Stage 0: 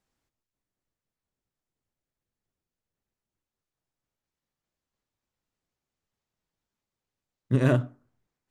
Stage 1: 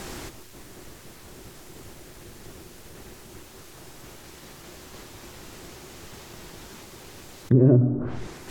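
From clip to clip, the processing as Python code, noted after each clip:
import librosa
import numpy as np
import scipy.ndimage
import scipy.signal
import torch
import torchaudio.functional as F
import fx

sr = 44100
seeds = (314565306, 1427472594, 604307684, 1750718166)

y = fx.env_lowpass_down(x, sr, base_hz=410.0, full_db=-27.5)
y = fx.peak_eq(y, sr, hz=360.0, db=8.0, octaves=0.34)
y = fx.env_flatten(y, sr, amount_pct=70)
y = F.gain(torch.from_numpy(y), 4.0).numpy()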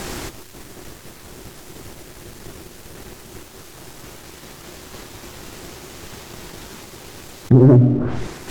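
y = fx.leveller(x, sr, passes=1)
y = F.gain(torch.from_numpy(y), 4.5).numpy()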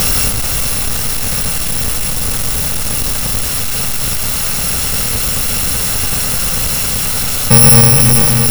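y = fx.bit_reversed(x, sr, seeds[0], block=128)
y = fx.echo_split(y, sr, split_hz=320.0, low_ms=282, high_ms=441, feedback_pct=52, wet_db=-11)
y = fx.power_curve(y, sr, exponent=0.35)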